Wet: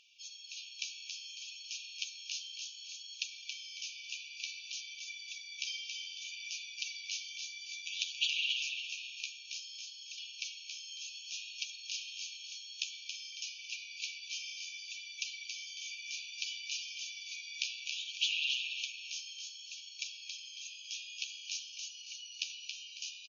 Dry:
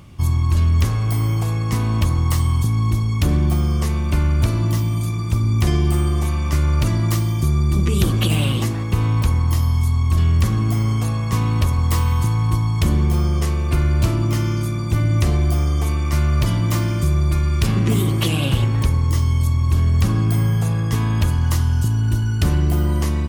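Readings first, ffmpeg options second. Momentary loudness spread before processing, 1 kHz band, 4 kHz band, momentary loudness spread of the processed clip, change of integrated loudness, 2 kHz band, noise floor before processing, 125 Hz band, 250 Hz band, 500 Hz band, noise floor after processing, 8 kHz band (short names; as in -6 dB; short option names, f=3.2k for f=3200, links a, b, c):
3 LU, under -40 dB, -4.0 dB, 10 LU, -20.5 dB, -9.0 dB, -21 dBFS, under -40 dB, under -40 dB, under -40 dB, -51 dBFS, -8.5 dB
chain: -filter_complex "[0:a]asplit=6[a][b][c][d][e][f];[b]adelay=275,afreqshift=-97,volume=-6dB[g];[c]adelay=550,afreqshift=-194,volume=-14.4dB[h];[d]adelay=825,afreqshift=-291,volume=-22.8dB[i];[e]adelay=1100,afreqshift=-388,volume=-31.2dB[j];[f]adelay=1375,afreqshift=-485,volume=-39.6dB[k];[a][g][h][i][j][k]amix=inputs=6:normalize=0,afftfilt=real='re*between(b*sr/4096,2300,6800)':imag='im*between(b*sr/4096,2300,6800)':win_size=4096:overlap=0.75,flanger=delay=6.1:depth=8.9:regen=23:speed=0.59:shape=sinusoidal,volume=-1.5dB"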